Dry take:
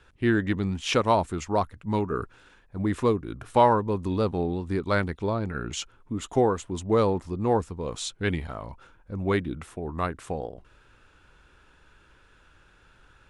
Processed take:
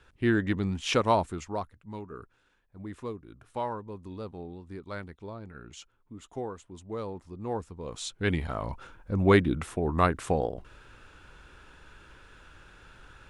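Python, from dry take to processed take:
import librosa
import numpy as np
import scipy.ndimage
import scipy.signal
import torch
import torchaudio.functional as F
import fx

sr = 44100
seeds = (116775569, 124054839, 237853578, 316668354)

y = fx.gain(x, sr, db=fx.line((1.16, -2.0), (1.91, -14.0), (7.02, -14.0), (7.82, -7.0), (8.7, 5.0)))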